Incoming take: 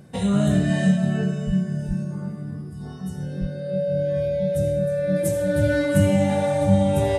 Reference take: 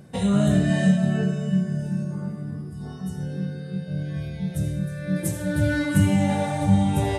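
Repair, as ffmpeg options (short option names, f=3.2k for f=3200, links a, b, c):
-filter_complex "[0:a]bandreject=f=570:w=30,asplit=3[a][b][c];[a]afade=t=out:st=1.46:d=0.02[d];[b]highpass=f=140:w=0.5412,highpass=f=140:w=1.3066,afade=t=in:st=1.46:d=0.02,afade=t=out:st=1.58:d=0.02[e];[c]afade=t=in:st=1.58:d=0.02[f];[d][e][f]amix=inputs=3:normalize=0,asplit=3[g][h][i];[g]afade=t=out:st=1.87:d=0.02[j];[h]highpass=f=140:w=0.5412,highpass=f=140:w=1.3066,afade=t=in:st=1.87:d=0.02,afade=t=out:st=1.99:d=0.02[k];[i]afade=t=in:st=1.99:d=0.02[l];[j][k][l]amix=inputs=3:normalize=0,asplit=3[m][n][o];[m]afade=t=out:st=3.4:d=0.02[p];[n]highpass=f=140:w=0.5412,highpass=f=140:w=1.3066,afade=t=in:st=3.4:d=0.02,afade=t=out:st=3.52:d=0.02[q];[o]afade=t=in:st=3.52:d=0.02[r];[p][q][r]amix=inputs=3:normalize=0"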